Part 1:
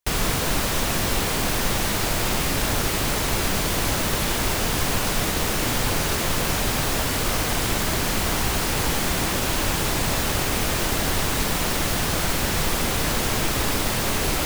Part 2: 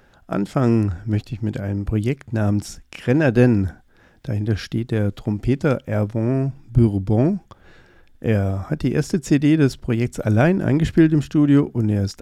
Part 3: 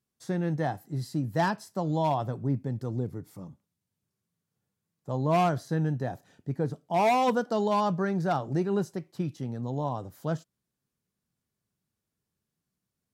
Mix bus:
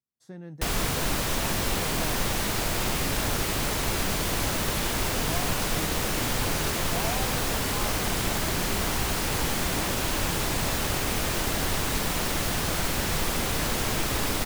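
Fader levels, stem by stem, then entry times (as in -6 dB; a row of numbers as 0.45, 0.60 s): -4.0 dB, off, -12.5 dB; 0.55 s, off, 0.00 s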